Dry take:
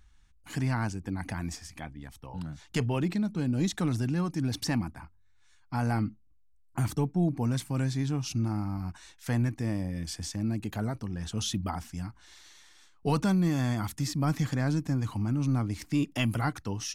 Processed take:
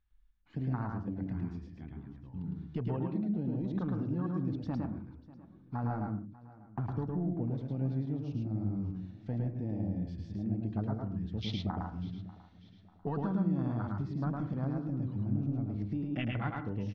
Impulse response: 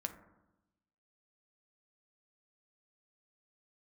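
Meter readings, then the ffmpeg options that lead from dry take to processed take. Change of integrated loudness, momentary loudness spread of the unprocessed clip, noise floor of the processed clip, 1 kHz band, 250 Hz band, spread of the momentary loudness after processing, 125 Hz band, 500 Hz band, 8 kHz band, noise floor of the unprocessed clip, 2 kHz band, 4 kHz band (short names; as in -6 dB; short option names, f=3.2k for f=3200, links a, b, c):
-5.0 dB, 12 LU, -59 dBFS, -6.0 dB, -4.0 dB, 11 LU, -4.5 dB, -5.0 dB, under -30 dB, -60 dBFS, -11.0 dB, -11.5 dB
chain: -filter_complex "[0:a]afwtdn=0.02,lowpass=f=4k:w=0.5412,lowpass=f=4k:w=1.3066,acompressor=threshold=-29dB:ratio=6,aecho=1:1:593|1186|1779:0.106|0.0455|0.0196,asplit=2[a][b];[1:a]atrim=start_sample=2205,afade=t=out:st=0.21:d=0.01,atrim=end_sample=9702,adelay=108[c];[b][c]afir=irnorm=-1:irlink=0,volume=-0.5dB[d];[a][d]amix=inputs=2:normalize=0,volume=-3dB"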